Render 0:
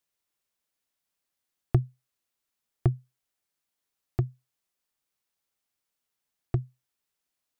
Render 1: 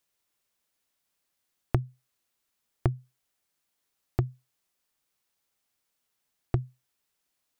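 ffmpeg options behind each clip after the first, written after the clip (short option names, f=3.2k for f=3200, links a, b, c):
-af "acompressor=threshold=-26dB:ratio=6,volume=4.5dB"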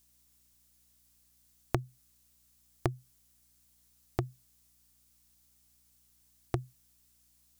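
-af "bass=f=250:g=-9,treble=f=4k:g=12,aeval=exprs='val(0)+0.000158*(sin(2*PI*60*n/s)+sin(2*PI*2*60*n/s)/2+sin(2*PI*3*60*n/s)/3+sin(2*PI*4*60*n/s)/4+sin(2*PI*5*60*n/s)/5)':c=same,volume=1dB"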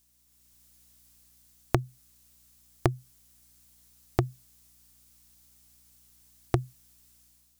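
-af "dynaudnorm=f=120:g=7:m=7dB"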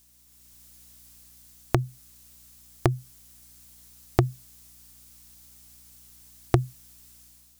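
-af "alimiter=limit=-10dB:level=0:latency=1:release=65,volume=8dB"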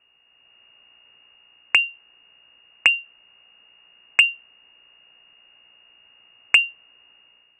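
-af "lowpass=f=2.5k:t=q:w=0.5098,lowpass=f=2.5k:t=q:w=0.6013,lowpass=f=2.5k:t=q:w=0.9,lowpass=f=2.5k:t=q:w=2.563,afreqshift=-2900,acontrast=64"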